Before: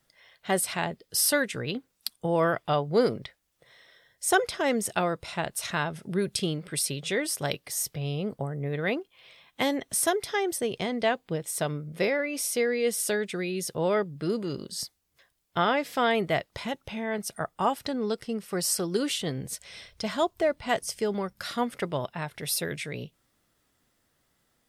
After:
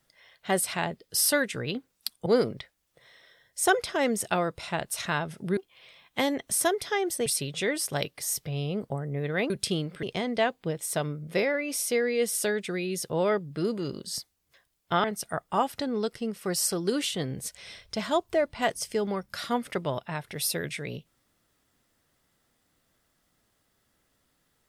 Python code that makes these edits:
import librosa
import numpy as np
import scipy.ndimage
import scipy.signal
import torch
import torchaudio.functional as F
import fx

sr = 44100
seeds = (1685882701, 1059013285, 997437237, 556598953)

y = fx.edit(x, sr, fx.cut(start_s=2.26, length_s=0.65),
    fx.swap(start_s=6.22, length_s=0.53, other_s=8.99, other_length_s=1.69),
    fx.cut(start_s=15.69, length_s=1.42), tone=tone)